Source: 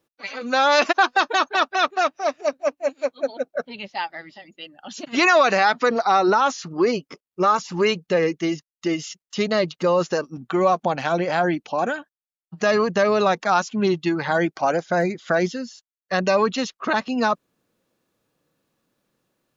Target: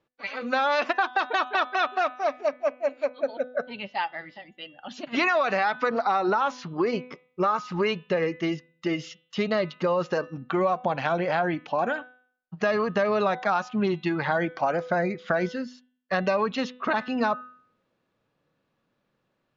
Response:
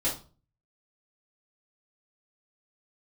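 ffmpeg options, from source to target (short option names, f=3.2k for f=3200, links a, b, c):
-filter_complex "[0:a]lowpass=3.3k,equalizer=f=320:w=1.8:g=-4,bandreject=f=250.6:t=h:w=4,bandreject=f=501.2:t=h:w=4,bandreject=f=751.8:t=h:w=4,bandreject=f=1.0024k:t=h:w=4,bandreject=f=1.253k:t=h:w=4,bandreject=f=1.5036k:t=h:w=4,bandreject=f=1.7542k:t=h:w=4,bandreject=f=2.0048k:t=h:w=4,bandreject=f=2.2554k:t=h:w=4,bandreject=f=2.506k:t=h:w=4,bandreject=f=2.7566k:t=h:w=4,bandreject=f=3.0072k:t=h:w=4,bandreject=f=3.2578k:t=h:w=4,bandreject=f=3.5084k:t=h:w=4,bandreject=f=3.759k:t=h:w=4,bandreject=f=4.0096k:t=h:w=4,acompressor=threshold=-21dB:ratio=4,asplit=2[a][b];[1:a]atrim=start_sample=2205,lowpass=2.8k[c];[b][c]afir=irnorm=-1:irlink=0,volume=-31dB[d];[a][d]amix=inputs=2:normalize=0"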